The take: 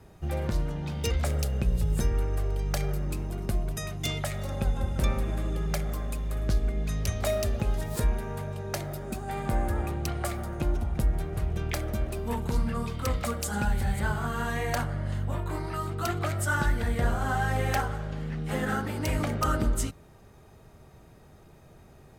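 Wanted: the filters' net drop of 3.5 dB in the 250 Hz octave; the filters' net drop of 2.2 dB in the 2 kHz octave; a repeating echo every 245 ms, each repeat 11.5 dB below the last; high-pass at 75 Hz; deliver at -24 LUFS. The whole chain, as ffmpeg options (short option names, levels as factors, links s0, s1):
-af "highpass=75,equalizer=f=250:t=o:g=-5,equalizer=f=2000:t=o:g=-3,aecho=1:1:245|490|735:0.266|0.0718|0.0194,volume=2.82"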